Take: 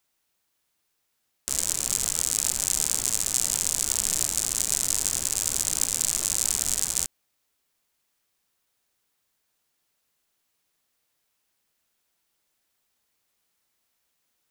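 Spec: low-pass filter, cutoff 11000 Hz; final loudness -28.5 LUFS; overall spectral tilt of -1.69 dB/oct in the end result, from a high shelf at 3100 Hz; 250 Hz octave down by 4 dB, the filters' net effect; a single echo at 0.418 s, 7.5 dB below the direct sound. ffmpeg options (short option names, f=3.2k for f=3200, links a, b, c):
-af "lowpass=11k,equalizer=f=250:t=o:g=-5.5,highshelf=f=3.1k:g=-8,aecho=1:1:418:0.422,volume=2dB"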